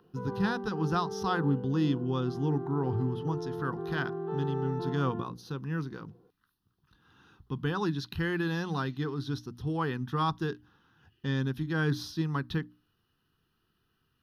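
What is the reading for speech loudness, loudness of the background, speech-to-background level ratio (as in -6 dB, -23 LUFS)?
-32.5 LUFS, -38.0 LUFS, 5.5 dB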